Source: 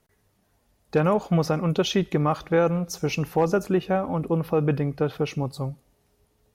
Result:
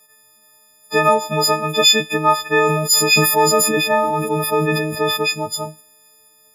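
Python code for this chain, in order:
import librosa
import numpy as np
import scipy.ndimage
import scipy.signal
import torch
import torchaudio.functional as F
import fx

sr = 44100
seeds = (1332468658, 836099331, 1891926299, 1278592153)

y = fx.freq_snap(x, sr, grid_st=6)
y = fx.highpass(y, sr, hz=610.0, slope=6)
y = fx.sustainer(y, sr, db_per_s=35.0, at=(2.63, 5.16), fade=0.02)
y = y * 10.0 ** (8.0 / 20.0)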